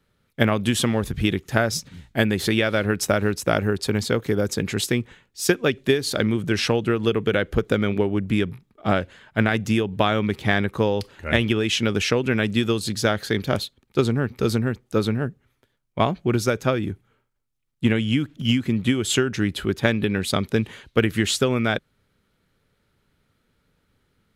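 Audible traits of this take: noise floor -70 dBFS; spectral tilt -5.0 dB/octave

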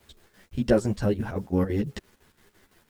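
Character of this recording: a quantiser's noise floor 10-bit, dither none; chopped level 5.9 Hz, depth 60%, duty 65%; a shimmering, thickened sound

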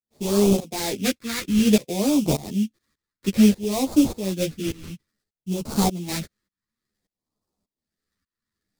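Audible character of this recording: aliases and images of a low sample rate 3 kHz, jitter 20%; phasing stages 2, 0.57 Hz, lowest notch 710–1700 Hz; tremolo saw up 1.7 Hz, depth 95%; a shimmering, thickened sound

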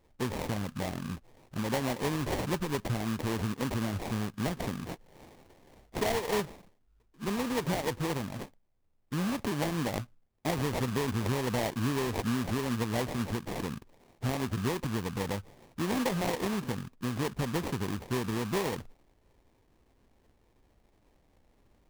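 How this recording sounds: aliases and images of a low sample rate 1.4 kHz, jitter 20%

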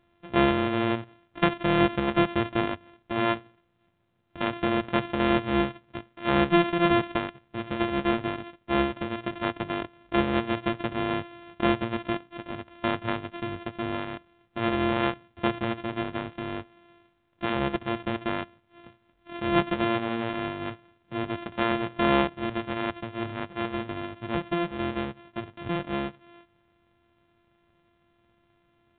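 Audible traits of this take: a buzz of ramps at a fixed pitch in blocks of 128 samples; µ-law

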